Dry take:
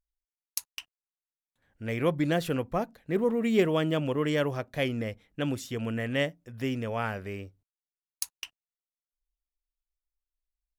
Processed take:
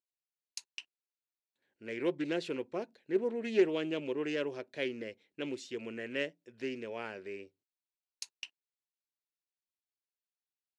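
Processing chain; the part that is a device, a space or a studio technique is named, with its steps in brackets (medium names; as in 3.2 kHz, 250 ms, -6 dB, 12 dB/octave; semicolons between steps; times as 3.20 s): full-range speaker at full volume (loudspeaker Doppler distortion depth 0.19 ms; cabinet simulation 280–8100 Hz, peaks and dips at 370 Hz +9 dB, 740 Hz -5 dB, 1.2 kHz -9 dB, 2.6 kHz +5 dB, 4.2 kHz +6 dB); trim -7.5 dB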